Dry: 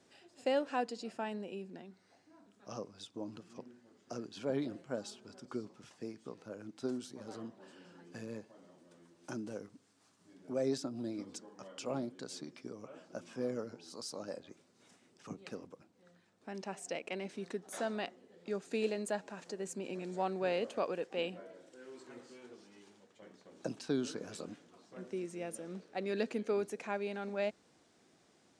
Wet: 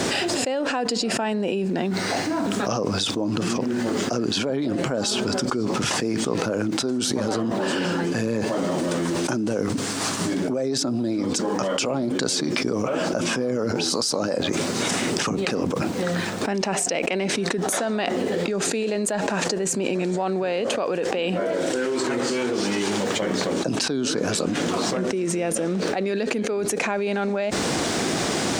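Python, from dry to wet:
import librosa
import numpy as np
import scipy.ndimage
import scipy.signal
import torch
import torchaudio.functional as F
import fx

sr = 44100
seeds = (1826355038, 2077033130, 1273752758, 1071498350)

y = fx.env_flatten(x, sr, amount_pct=100)
y = y * 10.0 ** (4.5 / 20.0)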